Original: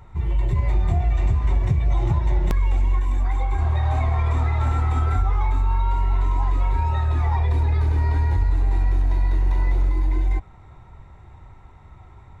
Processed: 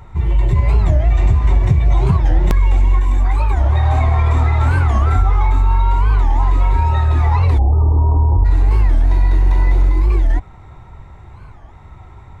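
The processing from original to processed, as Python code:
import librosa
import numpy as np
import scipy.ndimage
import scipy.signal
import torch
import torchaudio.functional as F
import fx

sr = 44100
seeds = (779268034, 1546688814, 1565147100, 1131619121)

y = fx.steep_lowpass(x, sr, hz=1200.0, slope=96, at=(7.59, 8.44), fade=0.02)
y = fx.record_warp(y, sr, rpm=45.0, depth_cents=250.0)
y = y * librosa.db_to_amplitude(7.0)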